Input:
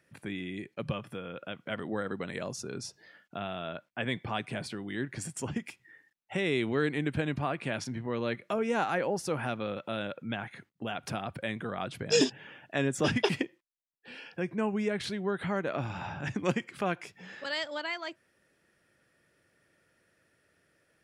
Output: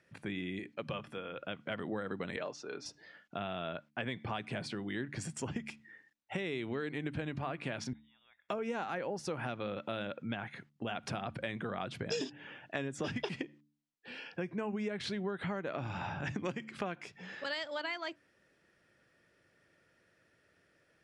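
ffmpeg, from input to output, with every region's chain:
-filter_complex "[0:a]asettb=1/sr,asplit=3[s0][s1][s2];[s0]atrim=end=0.594[s3];[s1]atrim=start=0.59:end=1.38,asetpts=PTS-STARTPTS,afade=t=in:d=0.004:c=qsin,afade=t=out:st=0.786:d=0.004:c=qsin,lowshelf=f=250:g=-8,bandreject=f=60:t=h:w=6,bandreject=f=120:t=h:w=6,bandreject=f=180:t=h:w=6,bandreject=f=240:t=h:w=6,bandreject=f=300:t=h:w=6[s4];[s2]atrim=start=1.376[s5];[s3][s4]acrossfade=d=0.004:c1=hsin:c2=qsin[s6];[s6][s5]acrossfade=d=0.004:c1=qsin:c2=hsin,asettb=1/sr,asplit=3[s7][s8][s9];[s7]atrim=end=2.364[s10];[s8]atrim=start=2.36:end=2.86,asetpts=PTS-STARTPTS,afade=t=in:d=0.004:c=qsin,afade=t=out:st=0.496:d=0.004:c=qsin,highpass=390,lowpass=3900,aecho=1:1:6.7:0.32,atrim=end_sample=22050[s11];[s9]atrim=start=2.856[s12];[s10][s11]acrossfade=d=0.004:c1=hsin:c2=qsin[s13];[s13][s12]acrossfade=d=0.004:c1=qsin:c2=hsin,asettb=1/sr,asplit=3[s14][s15][s16];[s14]atrim=end=7.934[s17];[s15]atrim=start=7.93:end=8.49,asetpts=PTS-STARTPTS,afade=t=in:d=0.004:c=qsin,afade=t=out:st=0.556:d=0.004:c=qsin,acompressor=threshold=0.00355:ratio=3:attack=3.2:release=140:knee=1:detection=peak,aderivative,lowpass=f=3300:t=q:w=0.5098,lowpass=f=3300:t=q:w=0.6013,lowpass=f=3300:t=q:w=0.9,lowpass=f=3300:t=q:w=2.563,afreqshift=-3900[s18];[s16]atrim=start=8.486[s19];[s17][s18]acrossfade=d=0.004:c1=hsin:c2=qsin[s20];[s20][s19]acrossfade=d=0.004:c1=qsin:c2=hsin,lowpass=6900,bandreject=f=73.39:t=h:w=4,bandreject=f=146.78:t=h:w=4,bandreject=f=220.17:t=h:w=4,bandreject=f=293.56:t=h:w=4,acompressor=threshold=0.0224:ratio=10"

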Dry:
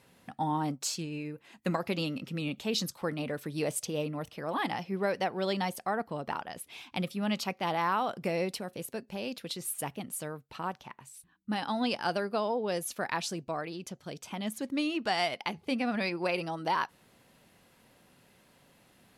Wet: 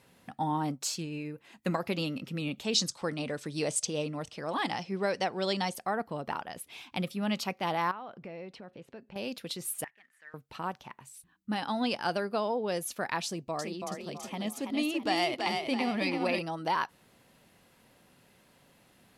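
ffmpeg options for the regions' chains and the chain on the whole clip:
-filter_complex "[0:a]asettb=1/sr,asplit=3[s0][s1][s2];[s0]atrim=end=2.644[s3];[s1]atrim=start=2.64:end=5.75,asetpts=PTS-STARTPTS,afade=t=in:d=0.004:c=qsin,afade=t=out:st=3.106:d=0.004:c=qsin,lowpass=f=8300:w=0.5412,lowpass=f=8300:w=1.3066,bass=f=250:g=-1,treble=f=4000:g=9[s4];[s2]atrim=start=5.746[s5];[s3][s4]acrossfade=d=0.004:c1=hsin:c2=qsin[s6];[s6][s5]acrossfade=d=0.004:c1=qsin:c2=hsin,asettb=1/sr,asplit=3[s7][s8][s9];[s7]atrim=end=7.914[s10];[s8]atrim=start=7.91:end=9.16,asetpts=PTS-STARTPTS,afade=t=in:d=0.004:c=qsin,afade=t=out:st=1.246:d=0.004:c=qsin,lowpass=2900,acompressor=threshold=0.00355:ratio=2:attack=3.2:release=140:knee=1:detection=peak[s11];[s9]atrim=start=9.156[s12];[s10][s11]acrossfade=d=0.004:c1=hsin:c2=qsin[s13];[s13][s12]acrossfade=d=0.004:c1=qsin:c2=hsin,asettb=1/sr,asplit=3[s14][s15][s16];[s14]atrim=end=9.844[s17];[s15]atrim=start=9.84:end=10.34,asetpts=PTS-STARTPTS,afade=t=in:d=0.004:c=qsin,afade=t=out:st=0.496:d=0.004:c=qsin,acrusher=bits=4:mode=log:mix=0:aa=0.000001,bandpass=f=1800:t=q:w=16,acontrast=72[s18];[s16]atrim=start=10.336[s19];[s17][s18]acrossfade=d=0.004:c1=hsin:c2=qsin[s20];[s20][s19]acrossfade=d=0.004:c1=qsin:c2=hsin,asettb=1/sr,asplit=3[s21][s22][s23];[s21]atrim=end=13.264[s24];[s22]atrim=start=13.26:end=16.39,asetpts=PTS-STARTPTS,afade=t=in:d=0.004:c=qsin,afade=t=out:st=3.126:d=0.004:c=qsin,bandreject=f=1500:w=5.6,asplit=6[s25][s26][s27][s28][s29][s30];[s26]adelay=329,afreqshift=30,volume=0.631[s31];[s27]adelay=658,afreqshift=60,volume=0.251[s32];[s28]adelay=987,afreqshift=90,volume=0.101[s33];[s29]adelay=1316,afreqshift=120,volume=0.0403[s34];[s30]adelay=1645,afreqshift=150,volume=0.0162[s35];[s25][s31][s32][s33][s34][s35]amix=inputs=6:normalize=0,atrim=end_sample=138033[s36];[s23]atrim=start=16.386[s37];[s24][s36]acrossfade=d=0.004:c1=hsin:c2=qsin[s38];[s38][s37]acrossfade=d=0.004:c1=qsin:c2=hsin"

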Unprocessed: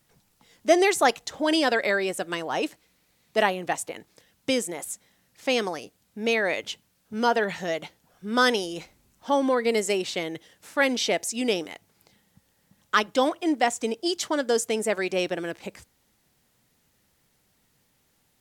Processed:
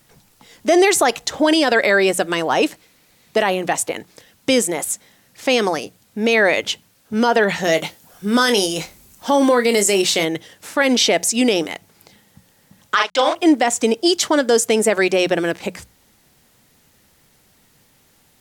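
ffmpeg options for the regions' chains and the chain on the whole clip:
-filter_complex "[0:a]asettb=1/sr,asplit=3[s0][s1][s2];[s0]atrim=end=7.644[s3];[s1]atrim=start=7.64:end=10.25,asetpts=PTS-STARTPTS,afade=t=in:d=0.004:c=qsin,afade=t=out:st=2.606:d=0.004:c=qsin,highshelf=f=5900:g=9.5,asplit=2[s4][s5];[s5]adelay=25,volume=0.316[s6];[s4][s6]amix=inputs=2:normalize=0,atrim=end_sample=115101[s7];[s2]atrim=start=10.246[s8];[s3][s7]acrossfade=d=0.004:c1=hsin:c2=qsin[s9];[s9][s8]acrossfade=d=0.004:c1=qsin:c2=hsin,asettb=1/sr,asplit=3[s10][s11][s12];[s10]atrim=end=12.954[s13];[s11]atrim=start=12.95:end=13.35,asetpts=PTS-STARTPTS,afade=t=in:d=0.004:c=qsin,afade=t=out:st=0.396:d=0.004:c=qsin,aeval=exprs='val(0)*gte(abs(val(0)),0.0141)':c=same,highpass=660,lowpass=6100,asplit=2[s14][s15];[s15]adelay=39,volume=0.562[s16];[s14][s16]amix=inputs=2:normalize=0,atrim=end_sample=17640[s17];[s12]atrim=start=13.346[s18];[s13][s17]acrossfade=d=0.004:c1=hsin:c2=qsin[s19];[s19][s18]acrossfade=d=0.004:c1=qsin:c2=hsin,bandreject=f=60:t=h:w=6,bandreject=f=120:t=h:w=6,bandreject=f=180:t=h:w=6,alimiter=level_in=6.31:limit=0.891:release=50:level=0:latency=1,volume=0.596"

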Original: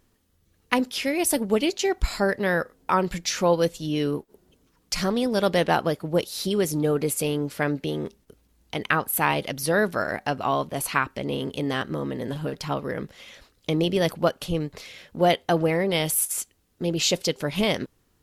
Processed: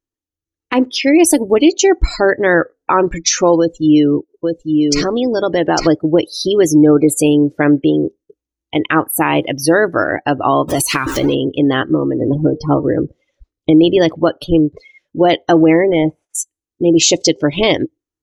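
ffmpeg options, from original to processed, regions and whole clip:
-filter_complex "[0:a]asettb=1/sr,asplit=3[s0][s1][s2];[s0]atrim=end=3.584[s3];[s1]atrim=start=3.58:end=5.87,asetpts=PTS-STARTPTS,afade=t=in:d=0.004:c=qsin,afade=t=out:st=2.286:d=0.004:c=qsin,acompressor=threshold=0.0794:ratio=3:attack=3.2:release=140:knee=1:detection=peak,aecho=1:1:852:0.668,atrim=end_sample=100989[s4];[s2]atrim=start=5.866[s5];[s3][s4]acrossfade=d=0.004:c1=hsin:c2=qsin[s6];[s6][s5]acrossfade=d=0.004:c1=qsin:c2=hsin,asettb=1/sr,asplit=3[s7][s8][s9];[s7]atrim=end=10.684[s10];[s8]atrim=start=10.68:end=11.35,asetpts=PTS-STARTPTS,afade=t=in:d=0.004:c=qsin,afade=t=out:st=0.666:d=0.004:c=qsin,aeval=exprs='val(0)+0.5*0.0447*sgn(val(0))':c=same,highshelf=f=3800:g=10,acompressor=threshold=0.0794:ratio=10:attack=3.2:release=140:knee=1:detection=peak[s11];[s9]atrim=start=11.346[s12];[s10][s11]acrossfade=d=0.004:c1=hsin:c2=qsin[s13];[s13][s12]acrossfade=d=0.004:c1=qsin:c2=hsin,asettb=1/sr,asplit=3[s14][s15][s16];[s14]atrim=end=12.214[s17];[s15]atrim=start=12.21:end=13.71,asetpts=PTS-STARTPTS,afade=t=in:d=0.004:c=qsin,afade=t=out:st=1.496:d=0.004:c=qsin,tiltshelf=f=810:g=4.5,bandreject=f=1700:w=28,bandreject=f=231.2:t=h:w=4,bandreject=f=462.4:t=h:w=4,bandreject=f=693.6:t=h:w=4,bandreject=f=924.8:t=h:w=4,bandreject=f=1156:t=h:w=4,bandreject=f=1387.2:t=h:w=4,bandreject=f=1618.4:t=h:w=4,bandreject=f=1849.6:t=h:w=4,bandreject=f=2080.8:t=h:w=4,bandreject=f=2312:t=h:w=4,bandreject=f=2543.2:t=h:w=4,bandreject=f=2774.4:t=h:w=4,bandreject=f=3005.6:t=h:w=4,bandreject=f=3236.8:t=h:w=4,bandreject=f=3468:t=h:w=4,bandreject=f=3699.2:t=h:w=4,bandreject=f=3930.4:t=h:w=4,bandreject=f=4161.6:t=h:w=4,bandreject=f=4392.8:t=h:w=4,bandreject=f=4624:t=h:w=4,bandreject=f=4855.2:t=h:w=4,bandreject=f=5086.4:t=h:w=4,bandreject=f=5317.6:t=h:w=4,bandreject=f=5548.8:t=h:w=4,bandreject=f=5780:t=h:w=4,bandreject=f=6011.2:t=h:w=4,bandreject=f=6242.4:t=h:w=4,bandreject=f=6473.6:t=h:w=4,bandreject=f=6704.8:t=h:w=4,bandreject=f=6936:t=h:w=4,bandreject=f=7167.2:t=h:w=4[s18];[s16]atrim=start=13.706[s19];[s17][s18]acrossfade=d=0.004:c1=hsin:c2=qsin[s20];[s20][s19]acrossfade=d=0.004:c1=qsin:c2=hsin,asettb=1/sr,asplit=3[s21][s22][s23];[s21]atrim=end=15.874[s24];[s22]atrim=start=15.87:end=16.35,asetpts=PTS-STARTPTS,afade=t=in:d=0.004:c=qsin,afade=t=out:st=0.476:d=0.004:c=qsin,lowpass=1900,volume=9.44,asoftclip=hard,volume=0.106[s25];[s23]atrim=start=16.346[s26];[s24][s25]acrossfade=d=0.004:c1=hsin:c2=qsin[s27];[s27][s26]acrossfade=d=0.004:c1=qsin:c2=hsin,afftdn=nr=35:nf=-33,equalizer=f=200:t=o:w=0.33:g=-12,equalizer=f=315:t=o:w=0.33:g=11,equalizer=f=6300:t=o:w=0.33:g=8,equalizer=f=12500:t=o:w=0.33:g=-8,alimiter=level_in=3.98:limit=0.891:release=50:level=0:latency=1,volume=0.891"

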